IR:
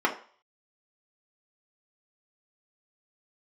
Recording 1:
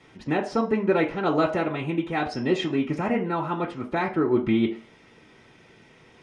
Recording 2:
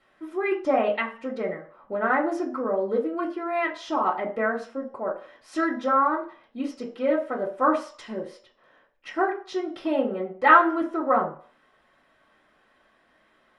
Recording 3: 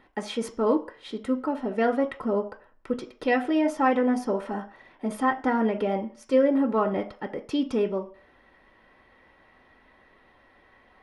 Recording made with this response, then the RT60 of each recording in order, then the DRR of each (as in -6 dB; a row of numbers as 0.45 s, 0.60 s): 1; 0.45 s, 0.45 s, 0.45 s; -2.0 dB, -6.0 dB, 3.0 dB